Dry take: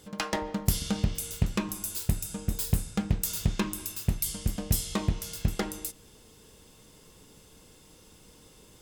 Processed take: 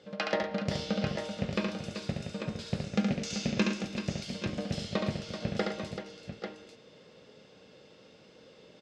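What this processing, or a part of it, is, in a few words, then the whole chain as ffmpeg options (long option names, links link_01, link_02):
kitchen radio: -filter_complex "[0:a]asettb=1/sr,asplit=3[link_01][link_02][link_03];[link_01]atrim=end=2.844[link_04];[link_02]atrim=start=2.84:end=3.8,asetpts=PTS-STARTPTS,afade=type=in:duration=0.004:curve=qsin,afade=type=out:start_time=0.956:duration=0.004:curve=qsin,equalizer=frequency=100:width_type=o:width=0.67:gain=-10,equalizer=frequency=250:width_type=o:width=0.67:gain=8,equalizer=frequency=2500:width_type=o:width=0.67:gain=4,equalizer=frequency=6300:width_type=o:width=0.67:gain=10[link_05];[link_03]atrim=start=3.796[link_06];[link_04][link_05]acrossfade=duration=0.004:curve1=hsin:curve2=qsin[link_07];[link_07][link_06]acrossfade=duration=0.004:curve1=qsin:curve2=hsin,highpass=180,equalizer=frequency=310:width_type=q:width=4:gain=-5,equalizer=frequency=560:width_type=q:width=4:gain=8,equalizer=frequency=990:width_type=q:width=4:gain=-8,equalizer=frequency=3300:width_type=q:width=4:gain=-3,lowpass=frequency=4500:width=0.5412,lowpass=frequency=4500:width=1.3066,aecho=1:1:70|110|384|826|843:0.631|0.282|0.335|0.112|0.422"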